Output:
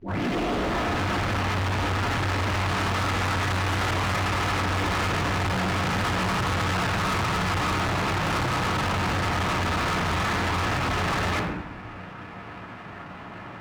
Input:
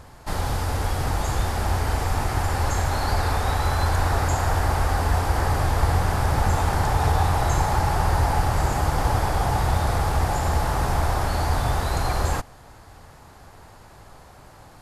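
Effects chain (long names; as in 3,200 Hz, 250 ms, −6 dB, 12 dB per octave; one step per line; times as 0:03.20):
turntable start at the beginning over 1.12 s
wrong playback speed 44.1 kHz file played as 48 kHz
convolution reverb RT60 0.70 s, pre-delay 3 ms, DRR −3 dB
formants moved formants +4 semitones
floating-point word with a short mantissa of 4 bits
high-pass filter 71 Hz 6 dB per octave
high-frequency loss of the air 280 metres
hard clipping −29.5 dBFS, distortion −5 dB
parametric band 140 Hz −3 dB 0.68 octaves
windowed peak hold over 3 samples
level +6 dB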